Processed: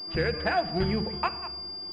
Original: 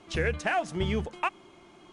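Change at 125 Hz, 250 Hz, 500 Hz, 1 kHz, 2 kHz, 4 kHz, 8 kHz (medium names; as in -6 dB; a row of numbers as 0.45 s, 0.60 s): +1.0 dB, +3.0 dB, +2.0 dB, +1.5 dB, -0.5 dB, +9.0 dB, under -15 dB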